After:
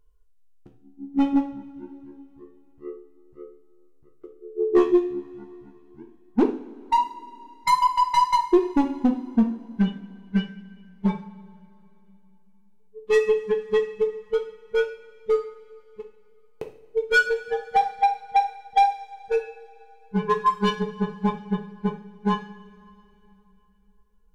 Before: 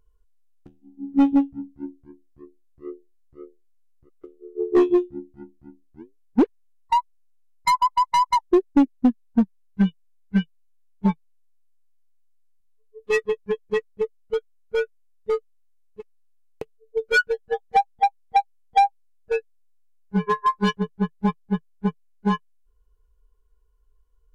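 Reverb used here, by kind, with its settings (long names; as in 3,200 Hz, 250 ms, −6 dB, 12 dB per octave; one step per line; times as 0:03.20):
coupled-rooms reverb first 0.5 s, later 3.3 s, from −20 dB, DRR 3 dB
level −2 dB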